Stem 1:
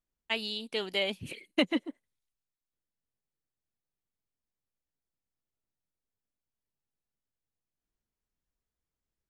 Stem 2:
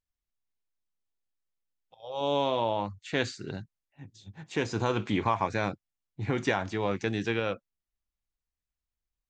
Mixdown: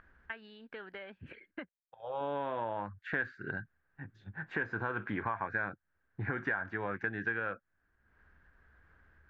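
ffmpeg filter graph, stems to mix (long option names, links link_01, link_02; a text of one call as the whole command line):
ffmpeg -i stem1.wav -i stem2.wav -filter_complex "[0:a]acompressor=threshold=-39dB:ratio=4,equalizer=frequency=74:width=3.7:gain=13,acompressor=mode=upward:threshold=-57dB:ratio=2.5,volume=-5.5dB,asplit=3[link_01][link_02][link_03];[link_01]atrim=end=1.69,asetpts=PTS-STARTPTS,afade=type=out:start_time=1.686:duration=0.004:curve=hsin[link_04];[link_02]atrim=start=1.69:end=3.34,asetpts=PTS-STARTPTS,volume=0[link_05];[link_03]atrim=start=3.34,asetpts=PTS-STARTPTS,afade=type=in:duration=0.004:curve=hsin[link_06];[link_04][link_05][link_06]concat=n=3:v=0:a=1[link_07];[1:a]agate=range=-33dB:threshold=-54dB:ratio=3:detection=peak,acontrast=33,volume=-6dB,asplit=2[link_08][link_09];[link_09]apad=whole_len=409768[link_10];[link_07][link_10]sidechaincompress=threshold=-37dB:ratio=3:attack=28:release=346[link_11];[link_11][link_08]amix=inputs=2:normalize=0,acompressor=mode=upward:threshold=-52dB:ratio=2.5,lowpass=frequency=1600:width_type=q:width=9,acompressor=threshold=-35dB:ratio=3" out.wav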